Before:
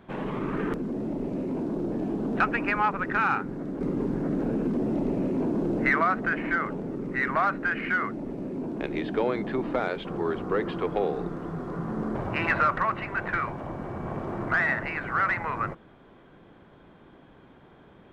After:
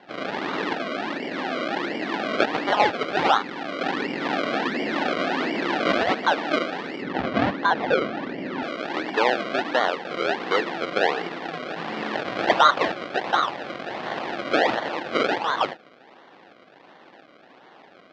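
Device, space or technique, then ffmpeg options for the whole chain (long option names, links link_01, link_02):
circuit-bent sampling toy: -filter_complex "[0:a]acrusher=samples=34:mix=1:aa=0.000001:lfo=1:lforange=34:lforate=1.4,highpass=400,equalizer=frequency=400:width_type=q:width=4:gain=-4,equalizer=frequency=790:width_type=q:width=4:gain=4,equalizer=frequency=1800:width_type=q:width=4:gain=4,lowpass=frequency=4200:width=0.5412,lowpass=frequency=4200:width=1.3066,asettb=1/sr,asplit=3[link_01][link_02][link_03];[link_01]atrim=end=7.024[link_04];[link_02]atrim=start=7.02:end=8.63,asetpts=PTS-STARTPTS,afade=type=in:duration=0.004:curve=qsin,afade=type=out:start_time=1.606:duration=0.004:curve=qsin,aemphasis=mode=reproduction:type=bsi[link_05];[link_03]atrim=start=8.626[link_06];[link_04][link_05]acrossfade=duration=0.004:curve1=hsin:curve2=qsin[link_07];[link_07][link_06]acrossfade=duration=0.004:curve1=qsin:curve2=hsin,volume=6.5dB"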